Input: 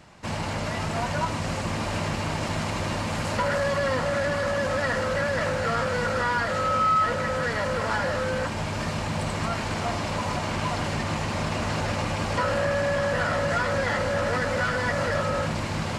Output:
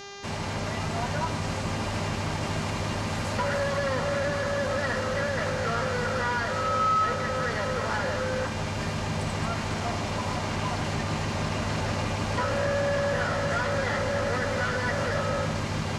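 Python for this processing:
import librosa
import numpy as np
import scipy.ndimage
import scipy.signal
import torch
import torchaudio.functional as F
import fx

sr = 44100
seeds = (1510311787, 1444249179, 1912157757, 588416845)

y = fx.echo_split(x, sr, split_hz=930.0, low_ms=155, high_ms=213, feedback_pct=52, wet_db=-13.0)
y = fx.dmg_buzz(y, sr, base_hz=400.0, harmonics=17, level_db=-39.0, tilt_db=-3, odd_only=False)
y = y * librosa.db_to_amplitude(-3.0)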